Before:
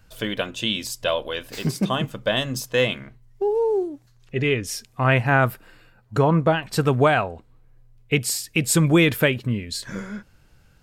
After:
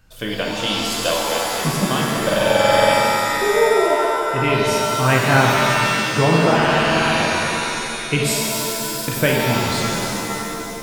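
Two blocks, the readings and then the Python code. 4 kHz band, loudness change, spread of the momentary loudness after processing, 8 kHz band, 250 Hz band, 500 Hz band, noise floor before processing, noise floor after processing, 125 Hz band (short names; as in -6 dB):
+6.5 dB, +4.5 dB, 8 LU, +6.0 dB, +2.5 dB, +5.0 dB, -57 dBFS, -28 dBFS, +1.5 dB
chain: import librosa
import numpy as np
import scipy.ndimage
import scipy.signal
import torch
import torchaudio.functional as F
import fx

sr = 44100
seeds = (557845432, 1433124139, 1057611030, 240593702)

y = fx.buffer_glitch(x, sr, at_s=(2.25, 6.55, 8.43), block=2048, repeats=13)
y = fx.rev_shimmer(y, sr, seeds[0], rt60_s=2.8, semitones=7, shimmer_db=-2, drr_db=-1.5)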